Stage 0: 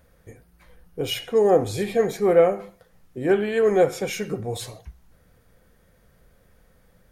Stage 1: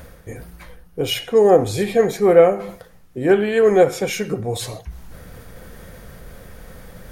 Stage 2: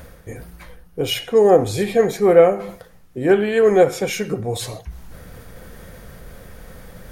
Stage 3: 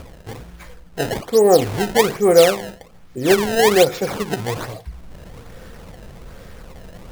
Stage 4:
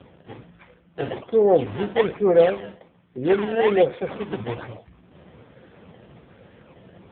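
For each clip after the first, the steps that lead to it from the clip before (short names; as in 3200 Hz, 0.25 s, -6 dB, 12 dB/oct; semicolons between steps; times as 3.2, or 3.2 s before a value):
reverse; upward compressor, threshold -30 dBFS; reverse; ending taper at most 310 dB/s; gain +5 dB
nothing audible
upward compressor, threshold -34 dBFS; decimation with a swept rate 22×, swing 160% 1.2 Hz
gain -3.5 dB; AMR-NB 5.15 kbps 8000 Hz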